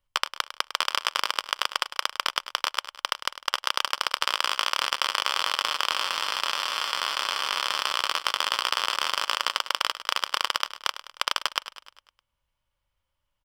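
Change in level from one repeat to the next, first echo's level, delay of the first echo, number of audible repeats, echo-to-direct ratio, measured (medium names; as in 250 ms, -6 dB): -5.0 dB, -13.5 dB, 102 ms, 5, -12.0 dB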